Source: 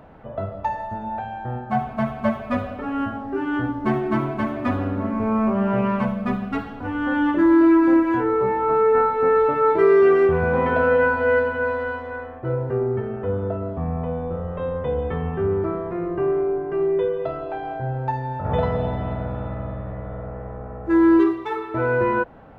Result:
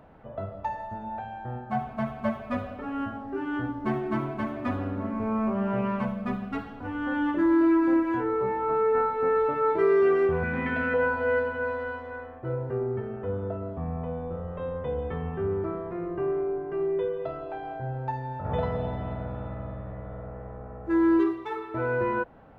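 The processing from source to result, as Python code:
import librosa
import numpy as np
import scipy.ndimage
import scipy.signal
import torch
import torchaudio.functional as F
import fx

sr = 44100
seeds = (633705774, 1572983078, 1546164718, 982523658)

y = fx.graphic_eq(x, sr, hz=(125, 250, 500, 1000, 2000), db=(-3, 6, -9, -7, 10), at=(10.43, 10.94))
y = y * librosa.db_to_amplitude(-6.5)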